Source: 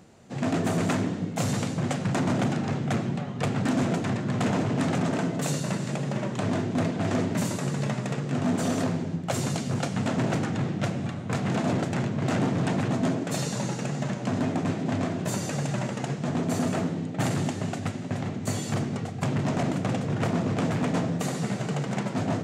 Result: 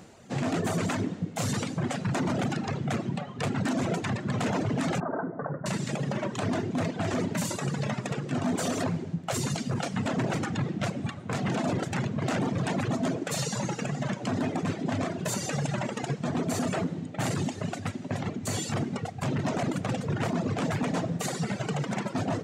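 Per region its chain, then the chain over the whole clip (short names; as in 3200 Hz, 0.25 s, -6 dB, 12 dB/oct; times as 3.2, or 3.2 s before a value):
5–5.66 steep low-pass 1600 Hz 48 dB/oct + low shelf 230 Hz -8.5 dB
whole clip: reverb removal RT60 1.9 s; low shelf 410 Hz -3 dB; limiter -26 dBFS; gain +5.5 dB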